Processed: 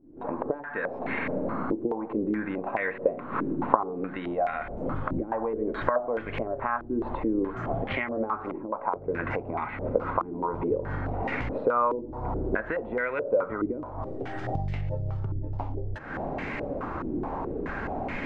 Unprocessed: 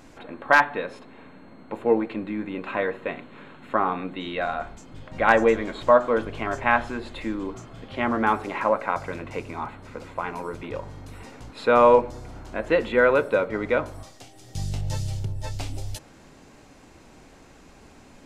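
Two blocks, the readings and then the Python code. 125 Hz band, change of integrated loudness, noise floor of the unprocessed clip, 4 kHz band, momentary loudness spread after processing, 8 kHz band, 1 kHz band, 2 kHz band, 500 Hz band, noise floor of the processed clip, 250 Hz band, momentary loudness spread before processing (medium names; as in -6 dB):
0.0 dB, -6.0 dB, -50 dBFS, -11.0 dB, 7 LU, no reading, -5.0 dB, -7.5 dB, -5.5 dB, -39 dBFS, -0.5 dB, 20 LU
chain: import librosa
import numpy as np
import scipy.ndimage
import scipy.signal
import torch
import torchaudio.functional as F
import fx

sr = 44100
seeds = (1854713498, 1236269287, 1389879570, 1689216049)

y = fx.recorder_agc(x, sr, target_db=-9.0, rise_db_per_s=78.0, max_gain_db=30)
y = fx.filter_held_lowpass(y, sr, hz=4.7, low_hz=330.0, high_hz=2100.0)
y = y * 10.0 ** (-15.0 / 20.0)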